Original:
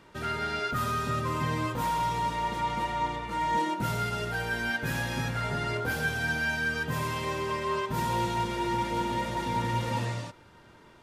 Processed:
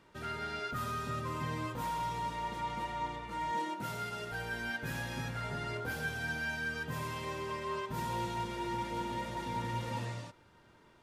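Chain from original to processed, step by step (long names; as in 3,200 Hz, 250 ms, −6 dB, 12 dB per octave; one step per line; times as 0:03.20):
0:03.51–0:04.32: high-pass filter 190 Hz 6 dB per octave
level −7.5 dB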